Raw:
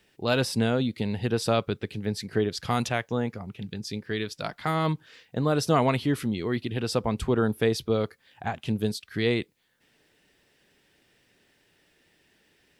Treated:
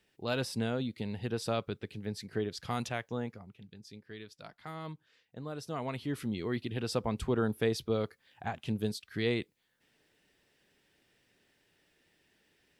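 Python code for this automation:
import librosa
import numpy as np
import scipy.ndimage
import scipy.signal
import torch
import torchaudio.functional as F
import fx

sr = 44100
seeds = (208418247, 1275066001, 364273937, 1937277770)

y = fx.gain(x, sr, db=fx.line((3.24, -8.5), (3.65, -16.5), (5.71, -16.5), (6.34, -6.0)))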